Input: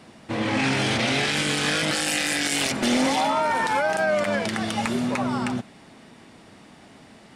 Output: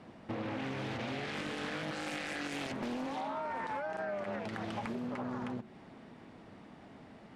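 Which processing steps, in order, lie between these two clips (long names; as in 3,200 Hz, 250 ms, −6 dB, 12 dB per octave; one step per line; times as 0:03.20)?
low-pass filter 1,400 Hz 6 dB per octave
hum removal 73.7 Hz, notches 5
downward compressor 6 to 1, threshold −32 dBFS, peak gain reduction 12.5 dB
highs frequency-modulated by the lows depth 0.43 ms
level −3.5 dB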